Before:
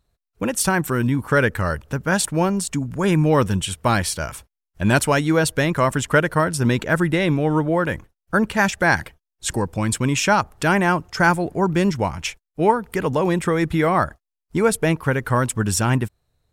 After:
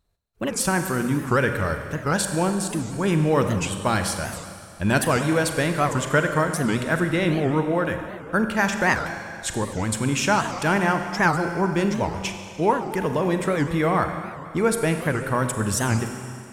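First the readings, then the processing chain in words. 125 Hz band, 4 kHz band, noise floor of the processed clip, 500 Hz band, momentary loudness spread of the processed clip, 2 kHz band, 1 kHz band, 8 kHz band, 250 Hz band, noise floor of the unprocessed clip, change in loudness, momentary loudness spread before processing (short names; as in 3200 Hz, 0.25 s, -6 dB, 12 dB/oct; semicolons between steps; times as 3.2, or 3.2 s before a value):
-3.5 dB, -2.5 dB, -40 dBFS, -2.5 dB, 8 LU, -2.5 dB, -2.5 dB, -2.5 dB, -2.5 dB, -84 dBFS, -3.0 dB, 7 LU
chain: notches 60/120 Hz; Schroeder reverb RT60 2.3 s, combs from 32 ms, DRR 6 dB; record warp 78 rpm, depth 250 cents; gain -3.5 dB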